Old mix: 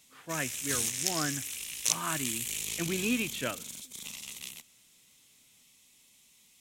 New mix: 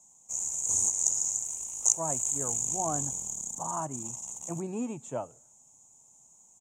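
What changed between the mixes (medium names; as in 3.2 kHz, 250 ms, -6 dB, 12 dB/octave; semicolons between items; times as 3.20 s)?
speech: entry +1.70 s; master: add FFT filter 150 Hz 0 dB, 280 Hz -4 dB, 490 Hz 0 dB, 860 Hz +11 dB, 1.7 kHz -21 dB, 4.7 kHz -25 dB, 6.8 kHz +13 dB, 11 kHz -16 dB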